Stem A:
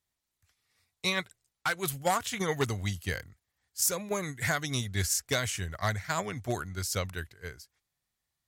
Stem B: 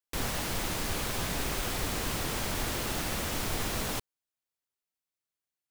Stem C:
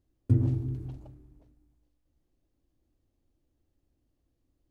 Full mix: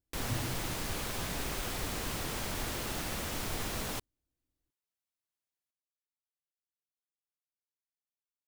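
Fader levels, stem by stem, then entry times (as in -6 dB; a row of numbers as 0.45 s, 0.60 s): mute, -4.0 dB, -13.5 dB; mute, 0.00 s, 0.00 s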